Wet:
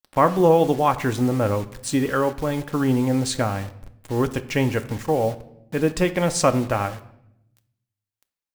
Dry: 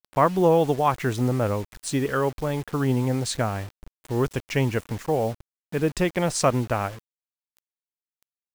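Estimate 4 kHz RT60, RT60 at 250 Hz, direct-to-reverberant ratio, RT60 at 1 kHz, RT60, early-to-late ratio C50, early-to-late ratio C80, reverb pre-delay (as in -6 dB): 0.60 s, 1.2 s, 9.0 dB, 0.70 s, 0.80 s, 15.5 dB, 18.5 dB, 4 ms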